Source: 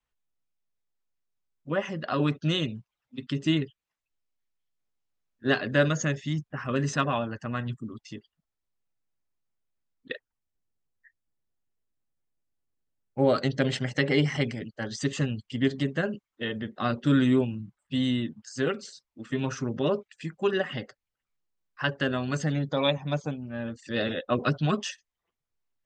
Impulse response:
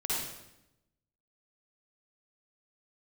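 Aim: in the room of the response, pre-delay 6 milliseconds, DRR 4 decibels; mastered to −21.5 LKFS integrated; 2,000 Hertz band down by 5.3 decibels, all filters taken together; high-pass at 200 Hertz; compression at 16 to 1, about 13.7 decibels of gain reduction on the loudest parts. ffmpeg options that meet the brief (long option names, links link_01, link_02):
-filter_complex "[0:a]highpass=200,equalizer=frequency=2000:width_type=o:gain=-7,acompressor=threshold=-33dB:ratio=16,asplit=2[link_01][link_02];[1:a]atrim=start_sample=2205,adelay=6[link_03];[link_02][link_03]afir=irnorm=-1:irlink=0,volume=-10.5dB[link_04];[link_01][link_04]amix=inputs=2:normalize=0,volume=16.5dB"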